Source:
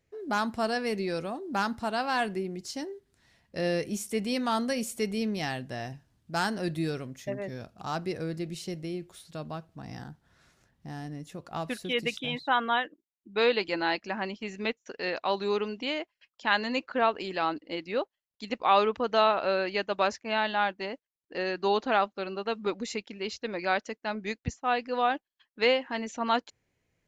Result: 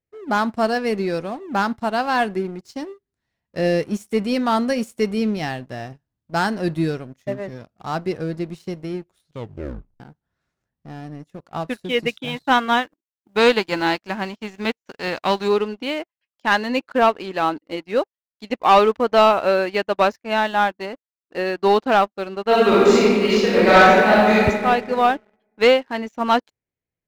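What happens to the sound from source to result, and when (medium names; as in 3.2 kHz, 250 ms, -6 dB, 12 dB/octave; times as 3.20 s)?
9.25 s: tape stop 0.75 s
12.26–15.47 s: formants flattened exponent 0.6
22.45–24.46 s: reverb throw, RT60 2.1 s, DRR -9.5 dB
whole clip: treble shelf 2.6 kHz -7 dB; waveshaping leveller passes 2; upward expansion 1.5:1, over -43 dBFS; trim +5.5 dB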